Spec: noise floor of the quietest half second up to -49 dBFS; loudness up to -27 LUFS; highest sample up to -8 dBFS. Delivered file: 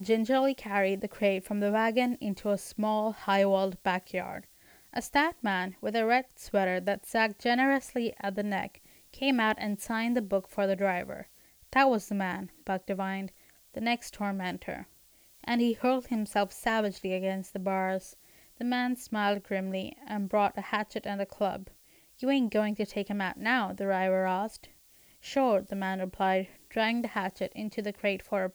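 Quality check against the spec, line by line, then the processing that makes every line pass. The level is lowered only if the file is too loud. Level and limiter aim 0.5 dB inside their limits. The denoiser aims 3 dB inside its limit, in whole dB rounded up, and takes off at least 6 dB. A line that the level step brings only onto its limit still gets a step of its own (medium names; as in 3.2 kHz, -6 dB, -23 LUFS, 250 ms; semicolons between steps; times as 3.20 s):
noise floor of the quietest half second -60 dBFS: pass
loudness -30.0 LUFS: pass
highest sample -12.5 dBFS: pass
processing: none needed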